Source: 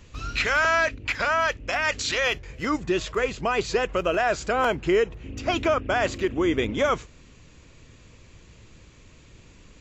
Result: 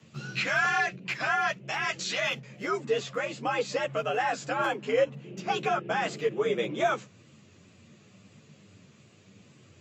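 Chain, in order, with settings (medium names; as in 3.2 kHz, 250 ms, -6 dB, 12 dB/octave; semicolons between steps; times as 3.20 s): frequency shift +88 Hz; wow and flutter 28 cents; three-phase chorus; trim -2 dB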